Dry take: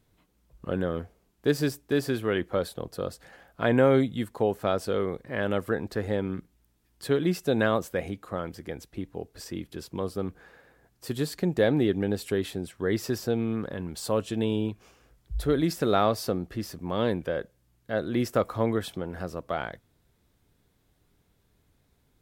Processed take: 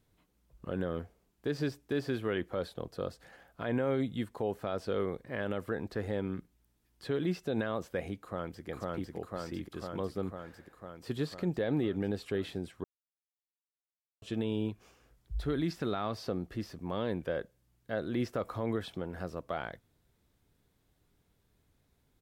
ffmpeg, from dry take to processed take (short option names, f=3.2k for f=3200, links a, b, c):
-filter_complex "[0:a]asplit=2[a][b];[b]afade=t=in:st=8.19:d=0.01,afade=t=out:st=8.68:d=0.01,aecho=0:1:500|1000|1500|2000|2500|3000|3500|4000|4500|5000|5500|6000:1|0.75|0.5625|0.421875|0.316406|0.237305|0.177979|0.133484|0.100113|0.0750847|0.0563135|0.0422351[c];[a][c]amix=inputs=2:normalize=0,asettb=1/sr,asplit=3[d][e][f];[d]atrim=end=15.404[g];[e]atrim=start=15.4:end=16.18,asetpts=PTS-STARTPTS,afade=t=in:d=0.004:c=qsin,afade=t=out:st=0.776:d=0.004:c=qsin,equalizer=f=530:w=2:g=-6[h];[f]atrim=start=16.176[i];[g][h]acrossfade=d=0.004:c1=hsin:c2=qsin[j];[j][i]acrossfade=d=0.004:c1=qsin:c2=hsin,asplit=3[k][l][m];[k]atrim=end=12.84,asetpts=PTS-STARTPTS,afade=t=out:st=12.836:d=0.004:c=hsin[n];[l]atrim=start=12.84:end=14.22,asetpts=PTS-STARTPTS,volume=0[o];[m]atrim=start=14.22,asetpts=PTS-STARTPTS,afade=t=in:d=0.004:c=hsin[p];[n][o][p]concat=n=3:v=0:a=1,acrossover=split=5000[q][r];[r]acompressor=threshold=-56dB:ratio=4:attack=1:release=60[s];[q][s]amix=inputs=2:normalize=0,alimiter=limit=-17.5dB:level=0:latency=1:release=60,volume=-4.5dB"